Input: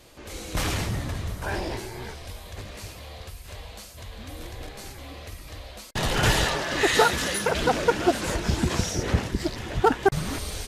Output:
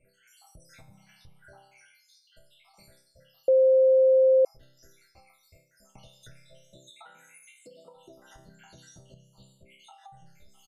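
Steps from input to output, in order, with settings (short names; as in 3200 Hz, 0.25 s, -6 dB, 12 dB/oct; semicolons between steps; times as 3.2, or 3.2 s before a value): random spectral dropouts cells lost 84%; resonator bank C3 major, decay 0.54 s; 6.9–7.96 HPF 190 Hz 24 dB/oct; comb 1.4 ms, depth 50%; compressor 5:1, threshold -59 dBFS, peak gain reduction 21 dB; 0.92–1.33 spectral repair 610–1300 Hz; 3.48–4.45 bleep 524 Hz -23.5 dBFS; gain +8 dB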